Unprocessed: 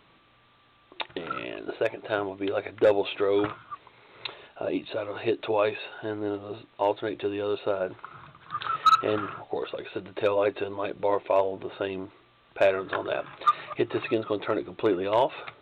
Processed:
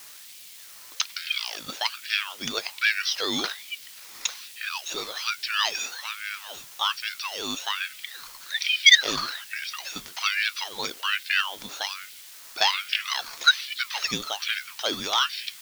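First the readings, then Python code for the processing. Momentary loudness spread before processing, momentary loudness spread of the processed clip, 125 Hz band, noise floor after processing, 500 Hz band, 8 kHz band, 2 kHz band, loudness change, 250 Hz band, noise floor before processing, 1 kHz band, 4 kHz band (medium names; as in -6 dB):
14 LU, 16 LU, -9.0 dB, -46 dBFS, -15.5 dB, no reading, +11.0 dB, +3.0 dB, -9.0 dB, -61 dBFS, -3.5 dB, +16.0 dB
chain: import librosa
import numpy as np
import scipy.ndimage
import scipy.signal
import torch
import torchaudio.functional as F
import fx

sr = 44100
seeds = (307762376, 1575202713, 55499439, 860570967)

p1 = fx.band_shuffle(x, sr, order='4123')
p2 = fx.peak_eq(p1, sr, hz=5500.0, db=4.5, octaves=0.87)
p3 = fx.quant_dither(p2, sr, seeds[0], bits=6, dither='triangular')
p4 = p2 + (p3 * 10.0 ** (-10.5 / 20.0))
p5 = fx.high_shelf_res(p4, sr, hz=2100.0, db=11.0, q=1.5)
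p6 = fx.ring_lfo(p5, sr, carrier_hz=960.0, swing_pct=70, hz=1.2)
y = p6 * 10.0 ** (-7.5 / 20.0)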